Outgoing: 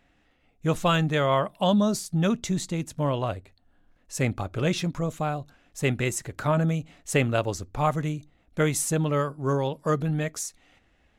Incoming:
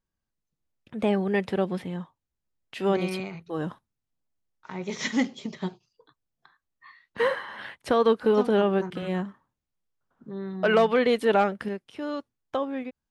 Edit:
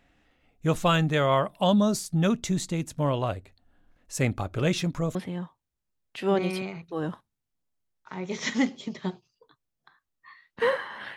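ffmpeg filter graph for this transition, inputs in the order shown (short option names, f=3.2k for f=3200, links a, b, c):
-filter_complex "[0:a]apad=whole_dur=11.16,atrim=end=11.16,atrim=end=5.152[a];[1:a]atrim=start=1.728:end=7.74[b];[a][b]acrossfade=d=0.004:c1=hsin:c2=hsin"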